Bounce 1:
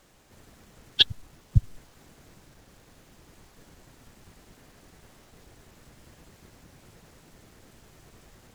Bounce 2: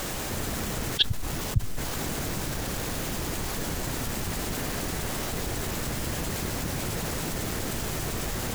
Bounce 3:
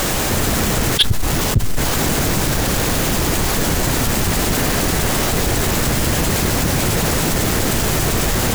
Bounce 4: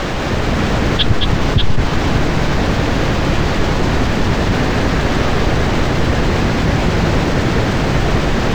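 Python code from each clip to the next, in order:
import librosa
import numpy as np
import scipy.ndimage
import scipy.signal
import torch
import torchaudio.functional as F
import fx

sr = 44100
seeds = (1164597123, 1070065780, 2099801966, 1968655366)

y1 = fx.high_shelf(x, sr, hz=11000.0, db=8.0)
y1 = fx.env_flatten(y1, sr, amount_pct=70)
y1 = F.gain(torch.from_numpy(y1), -5.0).numpy()
y2 = fx.leveller(y1, sr, passes=3)
y2 = F.gain(torch.from_numpy(y2), 2.5).numpy()
y3 = fx.air_absorb(y2, sr, metres=200.0)
y3 = fx.echo_multitap(y3, sr, ms=(220, 590), db=(-5.0, -5.0))
y3 = F.gain(torch.from_numpy(y3), 2.0).numpy()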